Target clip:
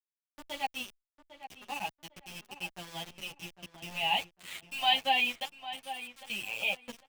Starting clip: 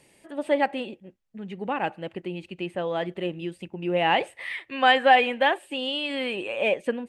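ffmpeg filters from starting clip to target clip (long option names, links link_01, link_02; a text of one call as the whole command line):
ffmpeg -i in.wav -filter_complex "[0:a]firequalizer=gain_entry='entry(130,0);entry(280,-14);entry(400,-23);entry(840,-4);entry(1400,-23);entry(2600,3);entry(4400,4);entry(7300,-17)':delay=0.05:min_phase=1,asettb=1/sr,asplit=3[link_01][link_02][link_03];[link_01]atrim=end=5.444[link_04];[link_02]atrim=start=5.44:end=6.3,asetpts=PTS-STARTPTS,afade=type=in:duration=0.004:curve=qsin,afade=type=out:start_time=0.856:duration=0.004:curve=qsin,acompressor=threshold=-42dB:ratio=5[link_05];[link_03]atrim=start=6.296[link_06];[link_04][link_05]acrossfade=duration=0.004:curve1=hsin:curve2=qsin[link_07];[link_07][link_06]acrossfade=duration=0.004:curve1=qsin:curve2=hsin,aeval=exprs='val(0)*gte(abs(val(0)),0.0158)':channel_layout=same,asplit=2[link_08][link_09];[link_09]adelay=802,lowpass=frequency=2300:poles=1,volume=-11.5dB,asplit=2[link_10][link_11];[link_11]adelay=802,lowpass=frequency=2300:poles=1,volume=0.26,asplit=2[link_12][link_13];[link_13]adelay=802,lowpass=frequency=2300:poles=1,volume=0.26[link_14];[link_08][link_10][link_12][link_14]amix=inputs=4:normalize=0,asplit=2[link_15][link_16];[link_16]adelay=9.8,afreqshift=-1.3[link_17];[link_15][link_17]amix=inputs=2:normalize=1" out.wav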